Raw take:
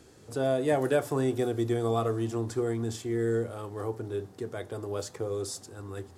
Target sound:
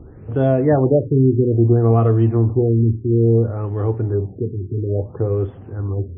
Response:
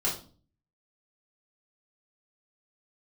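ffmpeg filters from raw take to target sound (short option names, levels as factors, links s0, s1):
-af "aemphasis=mode=reproduction:type=riaa,afftfilt=real='re*lt(b*sr/1024,410*pow(3500/410,0.5+0.5*sin(2*PI*0.59*pts/sr)))':imag='im*lt(b*sr/1024,410*pow(3500/410,0.5+0.5*sin(2*PI*0.59*pts/sr)))':win_size=1024:overlap=0.75,volume=2.24"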